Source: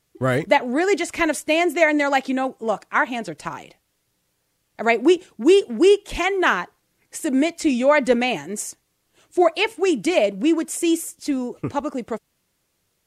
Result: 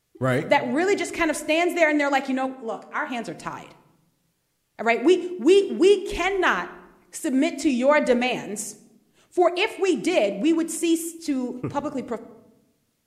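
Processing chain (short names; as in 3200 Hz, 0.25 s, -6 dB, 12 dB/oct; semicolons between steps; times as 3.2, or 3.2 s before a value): 2.46–3.1 resonator 76 Hz, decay 0.3 s, harmonics all, mix 70%; on a send: reverb RT60 0.90 s, pre-delay 16 ms, DRR 13 dB; on the sum: gain -2.5 dB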